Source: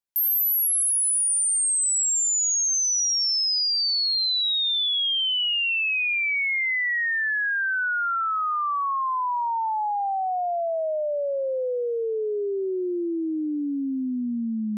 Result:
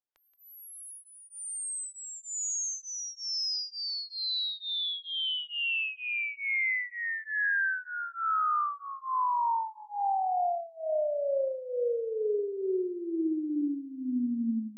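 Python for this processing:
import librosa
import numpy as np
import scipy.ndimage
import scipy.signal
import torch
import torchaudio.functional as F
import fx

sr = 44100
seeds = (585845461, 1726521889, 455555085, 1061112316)

p1 = scipy.signal.sosfilt(scipy.signal.butter(4, 8300.0, 'lowpass', fs=sr, output='sos'), x)
p2 = fx.high_shelf(p1, sr, hz=3700.0, db=-9.0)
p3 = p2 + fx.echo_feedback(p2, sr, ms=176, feedback_pct=49, wet_db=-12.5, dry=0)
p4 = fx.stagger_phaser(p3, sr, hz=1.1)
y = p4 * librosa.db_to_amplitude(-1.5)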